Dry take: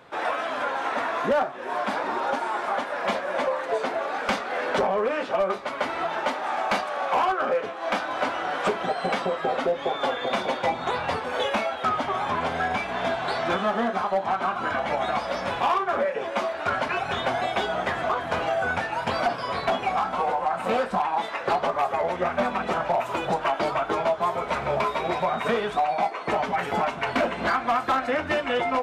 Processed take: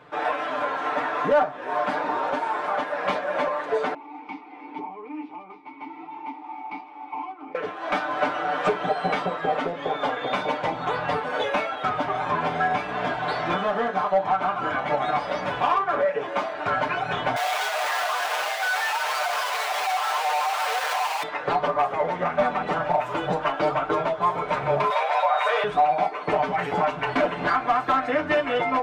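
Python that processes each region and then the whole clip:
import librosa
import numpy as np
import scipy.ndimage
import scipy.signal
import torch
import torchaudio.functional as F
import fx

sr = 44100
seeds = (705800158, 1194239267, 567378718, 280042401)

y = fx.chain(x, sr, fx.vowel_filter(vowel='u'),
    fx.peak_eq(hz=5100.0, db=5.5, octaves=0.57), at=(3.94, 7.55))
y = fx.chain(y, sr, fx.clip_1bit(),
    fx.highpass(hz=630.0, slope=24),
    fx.env_flatten(amount_pct=100), at=(17.36, 21.23))
y = fx.chain(y, sr, fx.steep_highpass(hz=530.0, slope=48),
    fx.env_flatten(amount_pct=70), at=(24.9, 25.64))
y = fx.high_shelf(y, sr, hz=4700.0, db=-10.5)
y = y + 0.72 * np.pad(y, (int(6.7 * sr / 1000.0), 0))[:len(y)]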